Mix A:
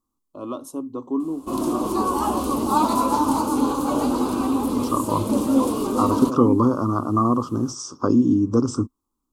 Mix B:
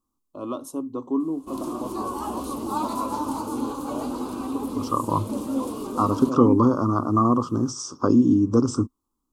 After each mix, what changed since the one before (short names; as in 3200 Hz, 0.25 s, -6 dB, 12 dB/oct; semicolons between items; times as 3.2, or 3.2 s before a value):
background -8.0 dB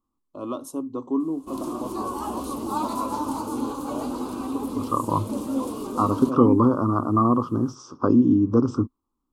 second voice: add LPF 2900 Hz 12 dB/oct